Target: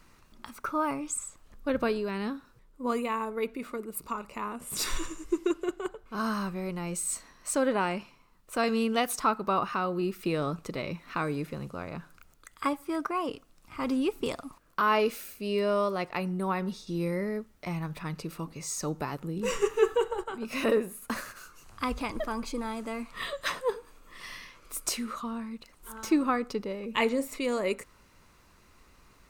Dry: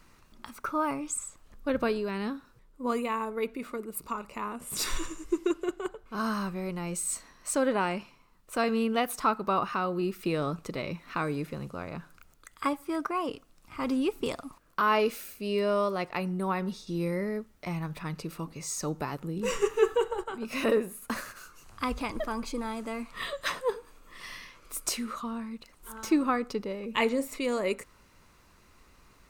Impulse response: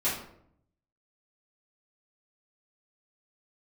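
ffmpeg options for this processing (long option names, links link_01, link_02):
-filter_complex "[0:a]asettb=1/sr,asplit=3[link_01][link_02][link_03];[link_01]atrim=end=8.634[link_04];[link_02]atrim=start=8.63:end=9.19,asetpts=PTS-STARTPTS,afade=type=in:duration=0.004:curve=qsin,afade=type=out:start_time=0.556:duration=0.004:curve=qsin,equalizer=frequency=6200:width=0.81:gain=7[link_05];[link_03]atrim=start=9.186[link_06];[link_04][link_05]acrossfade=duration=0.004:curve1=hsin:curve2=qsin[link_07];[link_07][link_06]acrossfade=duration=0.004:curve1=qsin:curve2=hsin"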